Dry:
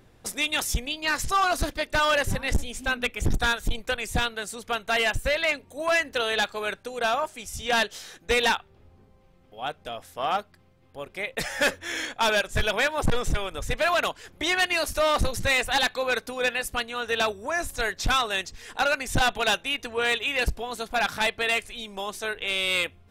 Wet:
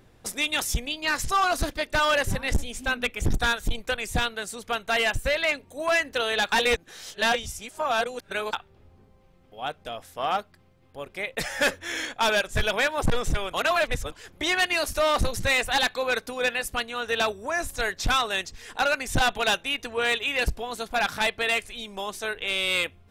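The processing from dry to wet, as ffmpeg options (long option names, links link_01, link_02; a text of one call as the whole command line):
ffmpeg -i in.wav -filter_complex "[0:a]asplit=5[link_01][link_02][link_03][link_04][link_05];[link_01]atrim=end=6.522[link_06];[link_02]atrim=start=6.518:end=8.532,asetpts=PTS-STARTPTS,areverse[link_07];[link_03]atrim=start=8.528:end=13.532[link_08];[link_04]atrim=start=13.528:end=14.122,asetpts=PTS-STARTPTS,areverse[link_09];[link_05]atrim=start=14.118[link_10];[link_06][link_07]acrossfade=duration=0.004:curve1=hsin:curve2=hsin[link_11];[link_11][link_08]acrossfade=duration=0.004:curve1=hsin:curve2=hsin[link_12];[link_12][link_09]acrossfade=duration=0.004:curve1=hsin:curve2=hsin[link_13];[link_13][link_10]acrossfade=duration=0.004:curve1=hsin:curve2=hsin" out.wav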